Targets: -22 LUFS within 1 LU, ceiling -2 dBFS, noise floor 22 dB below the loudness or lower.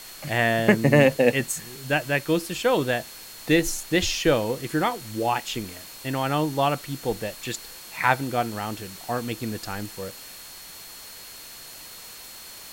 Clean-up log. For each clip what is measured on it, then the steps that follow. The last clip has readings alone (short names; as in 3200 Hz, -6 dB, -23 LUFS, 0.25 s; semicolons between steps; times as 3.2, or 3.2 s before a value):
steady tone 4300 Hz; tone level -47 dBFS; noise floor -42 dBFS; noise floor target -47 dBFS; loudness -24.5 LUFS; peak -2.5 dBFS; loudness target -22.0 LUFS
-> notch 4300 Hz, Q 30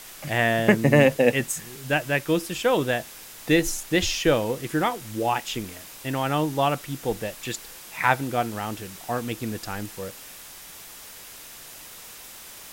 steady tone none; noise floor -43 dBFS; noise floor target -47 dBFS
-> denoiser 6 dB, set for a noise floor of -43 dBFS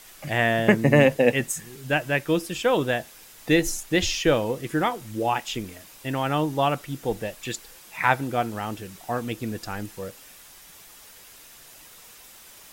noise floor -49 dBFS; loudness -24.5 LUFS; peak -2.5 dBFS; loudness target -22.0 LUFS
-> gain +2.5 dB; limiter -2 dBFS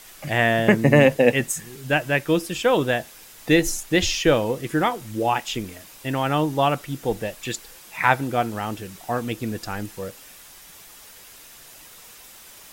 loudness -22.0 LUFS; peak -2.0 dBFS; noise floor -46 dBFS